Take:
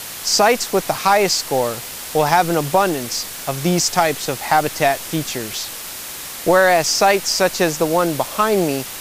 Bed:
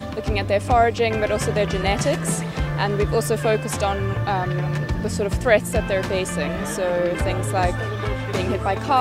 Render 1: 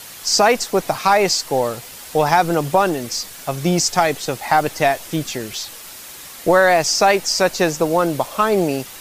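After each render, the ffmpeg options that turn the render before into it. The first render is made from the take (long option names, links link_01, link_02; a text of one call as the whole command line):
ffmpeg -i in.wav -af "afftdn=noise_reduction=7:noise_floor=-31" out.wav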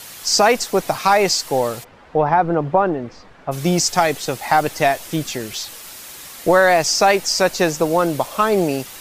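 ffmpeg -i in.wav -filter_complex "[0:a]asplit=3[link_01][link_02][link_03];[link_01]afade=type=out:start_time=1.83:duration=0.02[link_04];[link_02]lowpass=1400,afade=type=in:start_time=1.83:duration=0.02,afade=type=out:start_time=3.51:duration=0.02[link_05];[link_03]afade=type=in:start_time=3.51:duration=0.02[link_06];[link_04][link_05][link_06]amix=inputs=3:normalize=0" out.wav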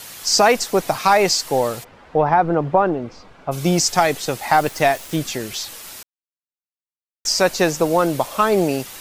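ffmpeg -i in.wav -filter_complex "[0:a]asettb=1/sr,asplit=3[link_01][link_02][link_03];[link_01]atrim=end=2.914[link_04];[link_02]atrim=start=2.91:end=3.7,asetpts=PTS-STARTPTS,afade=type=in:duration=0.004:curve=qsin,afade=type=out:start_time=0.786:duration=0.004:curve=qsin,bandreject=frequency=1800:width=7.3[link_05];[link_03]atrim=start=3.696[link_06];[link_04][link_05]acrossfade=duration=0.004:curve1=hsin:curve2=qsin[link_07];[link_07][link_06]acrossfade=duration=0.004:curve1=qsin:curve2=hsin,asettb=1/sr,asplit=3[link_08][link_09][link_10];[link_08]atrim=end=4.534[link_11];[link_09]atrim=start=4.53:end=5.16,asetpts=PTS-STARTPTS,afade=type=in:duration=0.004:curve=qsin,afade=type=out:start_time=0.626:duration=0.004:curve=qsin,aeval=exprs='val(0)*gte(abs(val(0)),0.02)':channel_layout=same[link_12];[link_10]atrim=start=5.156[link_13];[link_11][link_12]acrossfade=duration=0.004:curve1=hsin:curve2=qsin[link_14];[link_14][link_13]acrossfade=duration=0.004:curve1=qsin:curve2=hsin,asplit=3[link_15][link_16][link_17];[link_15]atrim=end=6.03,asetpts=PTS-STARTPTS,afade=type=out:start_time=6.026:duration=0.004:curve=hsin[link_18];[link_16]atrim=start=6.03:end=7.25,asetpts=PTS-STARTPTS,volume=0[link_19];[link_17]atrim=start=7.25,asetpts=PTS-STARTPTS,afade=type=in:duration=0.004:curve=hsin[link_20];[link_18][link_19][link_20]concat=n=3:v=0:a=1" out.wav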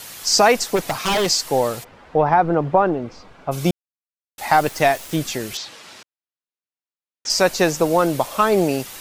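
ffmpeg -i in.wav -filter_complex "[0:a]asplit=3[link_01][link_02][link_03];[link_01]afade=type=out:start_time=0.75:duration=0.02[link_04];[link_02]aeval=exprs='0.2*(abs(mod(val(0)/0.2+3,4)-2)-1)':channel_layout=same,afade=type=in:start_time=0.75:duration=0.02,afade=type=out:start_time=1.26:duration=0.02[link_05];[link_03]afade=type=in:start_time=1.26:duration=0.02[link_06];[link_04][link_05][link_06]amix=inputs=3:normalize=0,asettb=1/sr,asplit=3[link_07][link_08][link_09];[link_07]atrim=end=5.574[link_10];[link_08]atrim=start=5.57:end=7.3,asetpts=PTS-STARTPTS,afade=type=in:duration=0.004:curve=qsin,afade=type=out:start_time=1.726:duration=0.004:curve=qsin,highpass=130,lowpass=4700[link_11];[link_09]atrim=start=7.296[link_12];[link_10][link_11]acrossfade=duration=0.004:curve1=hsin:curve2=qsin[link_13];[link_13][link_12]acrossfade=duration=0.004:curve1=qsin:curve2=hsin,asplit=3[link_14][link_15][link_16];[link_14]atrim=end=3.71,asetpts=PTS-STARTPTS,afade=type=out:start_time=3.706:duration=0.004:curve=hsin[link_17];[link_15]atrim=start=3.71:end=4.38,asetpts=PTS-STARTPTS,volume=0[link_18];[link_16]atrim=start=4.38,asetpts=PTS-STARTPTS,afade=type=in:duration=0.004:curve=hsin[link_19];[link_17][link_18][link_19]concat=n=3:v=0:a=1" out.wav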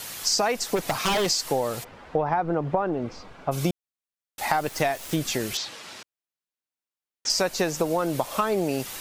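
ffmpeg -i in.wav -af "acompressor=threshold=-21dB:ratio=6" out.wav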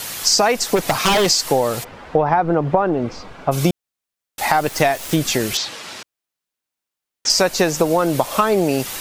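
ffmpeg -i in.wav -af "volume=8dB,alimiter=limit=-1dB:level=0:latency=1" out.wav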